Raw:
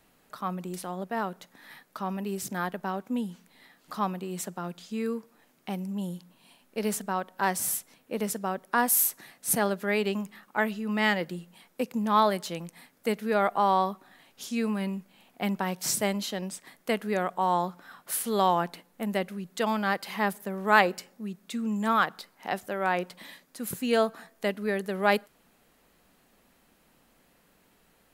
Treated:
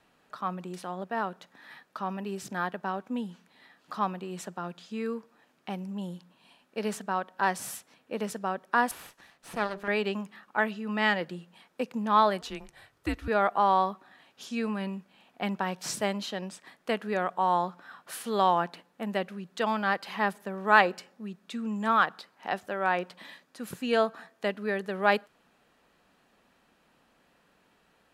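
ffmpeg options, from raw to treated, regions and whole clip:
ffmpeg -i in.wav -filter_complex "[0:a]asettb=1/sr,asplit=3[link_01][link_02][link_03];[link_01]atrim=end=8.914[link_04];[link_02]atrim=start=8.91:end=9.88,asetpts=PTS-STARTPTS,afade=type=in:duration=0.004:curve=qsin,afade=type=out:start_time=0.966:duration=0.004:curve=qsin,bandreject=frequency=50:width_type=h:width=6,bandreject=frequency=100:width_type=h:width=6,bandreject=frequency=150:width_type=h:width=6,bandreject=frequency=200:width_type=h:width=6,bandreject=frequency=250:width_type=h:width=6,bandreject=frequency=300:width_type=h:width=6,bandreject=frequency=350:width_type=h:width=6,bandreject=frequency=400:width_type=h:width=6,bandreject=frequency=450:width_type=h:width=6,acrossover=split=3000[link_05][link_06];[link_06]acompressor=threshold=-32dB:ratio=4:attack=1:release=60[link_07];[link_05][link_07]amix=inputs=2:normalize=0,aeval=exprs='max(val(0),0)':channel_layout=same[link_08];[link_03]atrim=start=9.876[link_09];[link_04][link_08]acrossfade=duration=0.004:curve1=hsin:curve2=qsin[link_10];[link_10][link_09]acrossfade=duration=0.004:curve1=qsin:curve2=hsin,asettb=1/sr,asplit=3[link_11][link_12][link_13];[link_11]atrim=end=12.414[link_14];[link_12]atrim=start=12.41:end=13.28,asetpts=PTS-STARTPTS,afade=type=in:duration=0.004:curve=qsin,afade=type=out:start_time=0.866:duration=0.004:curve=qsin,afreqshift=-150,bandreject=frequency=1600:width=20[link_15];[link_13]atrim=start=13.276[link_16];[link_14][link_15]acrossfade=duration=0.004:curve1=hsin:curve2=qsin[link_17];[link_17][link_16]acrossfade=duration=0.004:curve1=qsin:curve2=hsin,highpass=frequency=1300:poles=1,aemphasis=mode=reproduction:type=riaa,bandreject=frequency=2100:width=13,volume=5dB" out.wav

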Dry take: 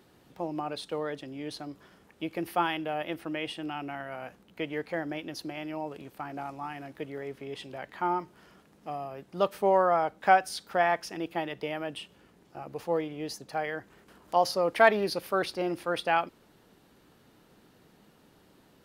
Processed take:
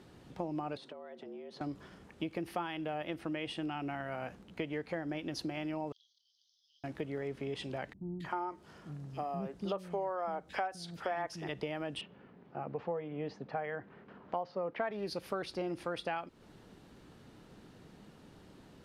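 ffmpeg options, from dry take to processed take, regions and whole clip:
ffmpeg -i in.wav -filter_complex "[0:a]asettb=1/sr,asplit=3[link_01][link_02][link_03];[link_01]atrim=end=0.774[link_04];[link_02]atrim=start=0.77:end=1.61,asetpts=PTS-STARTPTS,afade=type=in:duration=0.004:curve=qsin,afade=type=out:start_time=0.836:duration=0.004:curve=qsin,lowpass=frequency=1700:poles=1,acompressor=threshold=-46dB:ratio=16:attack=3.2:release=140:knee=1:detection=peak,afreqshift=91[link_05];[link_03]atrim=start=1.606[link_06];[link_04][link_05]acrossfade=duration=0.004:curve1=hsin:curve2=qsin[link_07];[link_07][link_06]acrossfade=duration=0.004:curve1=qsin:curve2=hsin,asettb=1/sr,asplit=3[link_08][link_09][link_10];[link_08]atrim=end=5.924[link_11];[link_09]atrim=start=5.92:end=6.84,asetpts=PTS-STARTPTS,afade=type=in:duration=0.004:curve=qsin,afade=type=out:start_time=0.916:duration=0.004:curve=qsin,agate=range=-33dB:threshold=-51dB:ratio=3:release=100:detection=peak,acompressor=threshold=-51dB:ratio=1.5:attack=3.2:release=140:knee=1:detection=peak,asuperpass=centerf=4500:order=20:qfactor=1.4[link_12];[link_10]atrim=start=6.836[link_13];[link_11][link_12]acrossfade=duration=0.004:curve1=hsin:curve2=qsin[link_14];[link_14][link_13]acrossfade=duration=0.004:curve1=qsin:curve2=hsin,asettb=1/sr,asplit=3[link_15][link_16][link_17];[link_15]atrim=end=7.934[link_18];[link_16]atrim=start=7.93:end=11.49,asetpts=PTS-STARTPTS,afade=type=in:duration=0.004:curve=qsin,afade=type=out:start_time=3.556:duration=0.004:curve=qsin,highpass=49,acrossover=split=250|2500[link_19][link_20][link_21];[link_21]adelay=270[link_22];[link_20]adelay=310[link_23];[link_19][link_23][link_22]amix=inputs=3:normalize=0,atrim=end_sample=156996[link_24];[link_17]atrim=start=11.486[link_25];[link_18][link_24]acrossfade=duration=0.004:curve1=hsin:curve2=qsin[link_26];[link_26][link_25]acrossfade=duration=0.004:curve1=qsin:curve2=hsin,asettb=1/sr,asplit=3[link_27][link_28][link_29];[link_27]atrim=end=12.014[link_30];[link_28]atrim=start=12.01:end=14.91,asetpts=PTS-STARTPTS,afade=type=in:duration=0.004:curve=qsin,afade=type=out:start_time=2.896:duration=0.004:curve=qsin,highpass=140,lowpass=2600,aemphasis=mode=reproduction:type=50fm,bandreject=frequency=320:width=7.6[link_31];[link_29]atrim=start=14.906[link_32];[link_30][link_31]acrossfade=duration=0.004:curve1=hsin:curve2=qsin[link_33];[link_33][link_32]acrossfade=duration=0.004:curve1=qsin:curve2=hsin,lowpass=9100,lowshelf=frequency=240:gain=7,acompressor=threshold=-35dB:ratio=6,volume=1dB" out.wav

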